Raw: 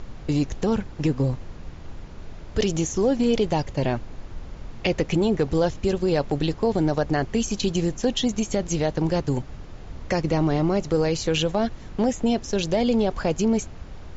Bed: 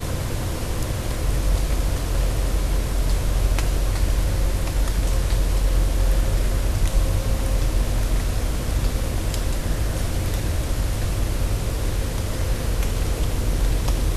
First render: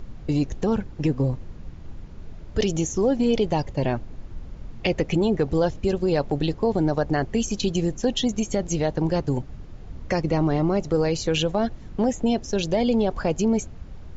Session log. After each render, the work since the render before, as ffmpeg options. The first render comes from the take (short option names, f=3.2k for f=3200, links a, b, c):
-af "afftdn=nr=7:nf=-39"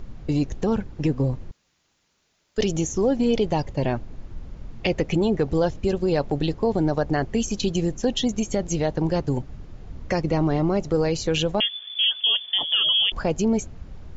-filter_complex "[0:a]asettb=1/sr,asplit=3[a][b][c];[a]atrim=end=1.514[d];[b]atrim=start=1.51:end=2.58,asetpts=PTS-STARTPTS,afade=t=in:d=0.004:c=qsin,afade=t=out:st=1.066:d=0.004:c=qsin,aderivative[e];[c]atrim=start=2.576[f];[d][e]acrossfade=d=0.004:c1=hsin:c2=qsin[g];[g][f]acrossfade=d=0.004:c1=qsin:c2=hsin,asettb=1/sr,asplit=3[h][i][j];[h]atrim=end=11.604[k];[i]atrim=start=11.6:end=13.12,asetpts=PTS-STARTPTS,afade=t=in:d=0.004:c=qsin,afade=t=out:st=1.516:d=0.004:c=qsin,lowpass=f=3k:t=q:w=0.5098,lowpass=f=3k:t=q:w=0.6013,lowpass=f=3k:t=q:w=0.9,lowpass=f=3k:t=q:w=2.563,afreqshift=-3500[l];[j]atrim=start=13.116[m];[k][l]acrossfade=d=0.004:c1=hsin:c2=qsin[n];[n][m]acrossfade=d=0.004:c1=qsin:c2=hsin"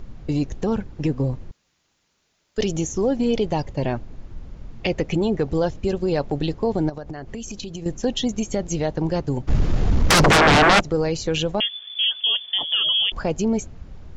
-filter_complex "[0:a]asettb=1/sr,asplit=3[a][b][c];[a]atrim=end=6.894[d];[b]atrim=start=6.89:end=7.86,asetpts=PTS-STARTPTS,afade=t=in:d=0.004:c=qsin,afade=t=out:st=0.966:d=0.004:c=qsin,acompressor=threshold=-28dB:ratio=12:attack=3.2:release=140:knee=1:detection=peak[e];[c]atrim=start=7.856[f];[d][e]acrossfade=d=0.004:c1=hsin:c2=qsin[g];[g][f]acrossfade=d=0.004:c1=qsin:c2=hsin,asplit=3[h][i][j];[h]afade=t=out:st=9.47:d=0.02[k];[i]aeval=exprs='0.299*sin(PI/2*7.94*val(0)/0.299)':c=same,afade=t=in:st=9.47:d=0.02,afade=t=out:st=10.79:d=0.02[l];[j]afade=t=in:st=10.79:d=0.02[m];[k][l][m]amix=inputs=3:normalize=0"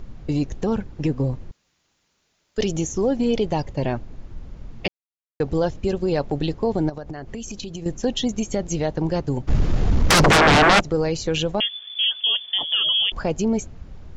-filter_complex "[0:a]asplit=3[a][b][c];[a]atrim=end=4.88,asetpts=PTS-STARTPTS,afade=t=out:st=4.876:d=0.004:c=hsin[d];[b]atrim=start=4.88:end=5.4,asetpts=PTS-STARTPTS,volume=0[e];[c]atrim=start=5.4,asetpts=PTS-STARTPTS,afade=t=in:d=0.004:c=hsin[f];[d][e][f]concat=n=3:v=0:a=1"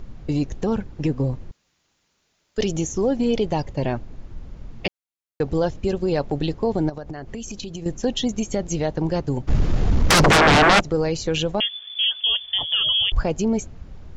-filter_complex "[0:a]asettb=1/sr,asplit=3[a][b][c];[a]atrim=end=12.254[d];[b]atrim=start=12.25:end=13.23,asetpts=PTS-STARTPTS,afade=t=in:d=0.004:c=qsin,afade=t=out:st=0.976:d=0.004:c=qsin,lowshelf=f=150:t=q:w=1.5:g=12.5[e];[c]atrim=start=13.226[f];[d][e]acrossfade=d=0.004:c1=hsin:c2=qsin[g];[g][f]acrossfade=d=0.004:c1=qsin:c2=hsin"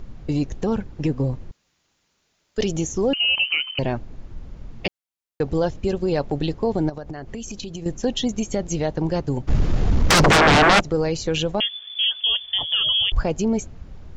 -filter_complex "[0:a]asettb=1/sr,asplit=3[a][b][c];[a]atrim=end=3.134[d];[b]atrim=start=3.13:end=3.79,asetpts=PTS-STARTPTS,afade=t=in:d=0.004:c=qsin,afade=t=out:st=0.656:d=0.004:c=qsin,lowpass=f=2.6k:t=q:w=0.5098,lowpass=f=2.6k:t=q:w=0.6013,lowpass=f=2.6k:t=q:w=0.9,lowpass=f=2.6k:t=q:w=2.563,afreqshift=-3100[e];[c]atrim=start=3.786[f];[d][e]acrossfade=d=0.004:c1=hsin:c2=qsin[g];[g][f]acrossfade=d=0.004:c1=qsin:c2=hsin,asettb=1/sr,asplit=3[h][i][j];[h]atrim=end=9.694[k];[i]atrim=start=9.69:end=10.72,asetpts=PTS-STARTPTS,afade=t=in:d=0.004:c=qsin,afade=t=out:st=1.026:d=0.004:c=qsin,equalizer=f=11k:w=7.5:g=-11[l];[j]atrim=start=10.716[m];[k][l]acrossfade=d=0.004:c1=hsin:c2=qsin[n];[n][m]acrossfade=d=0.004:c1=qsin:c2=hsin"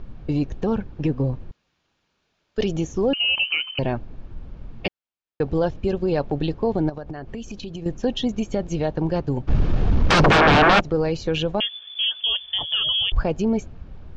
-af "lowpass=3.7k,bandreject=f=2k:w=13"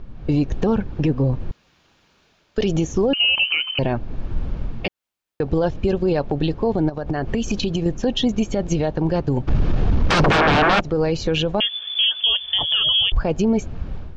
-af "dynaudnorm=f=110:g=5:m=12.5dB,alimiter=limit=-10.5dB:level=0:latency=1:release=186"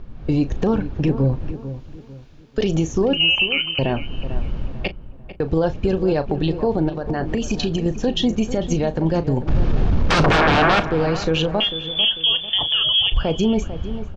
-filter_complex "[0:a]asplit=2[a][b];[b]adelay=37,volume=-13.5dB[c];[a][c]amix=inputs=2:normalize=0,asplit=2[d][e];[e]adelay=446,lowpass=f=1.9k:p=1,volume=-12dB,asplit=2[f][g];[g]adelay=446,lowpass=f=1.9k:p=1,volume=0.35,asplit=2[h][i];[i]adelay=446,lowpass=f=1.9k:p=1,volume=0.35,asplit=2[j][k];[k]adelay=446,lowpass=f=1.9k:p=1,volume=0.35[l];[d][f][h][j][l]amix=inputs=5:normalize=0"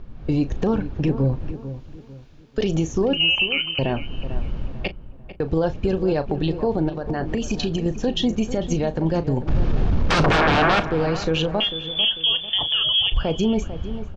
-af "volume=-2dB"